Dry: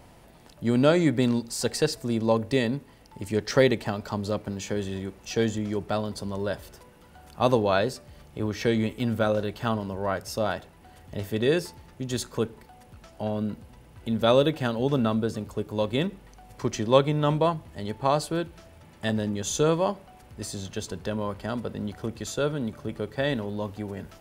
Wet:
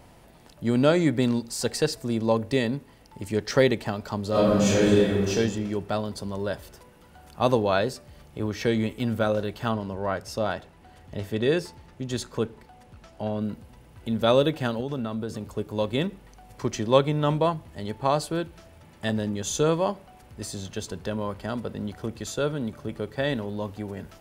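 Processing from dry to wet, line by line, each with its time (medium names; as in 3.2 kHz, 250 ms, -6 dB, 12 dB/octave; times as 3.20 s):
4.30–5.29 s: reverb throw, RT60 1.5 s, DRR -11 dB
9.71–13.42 s: treble shelf 11 kHz -11 dB
14.80–15.45 s: compression 3:1, threshold -27 dBFS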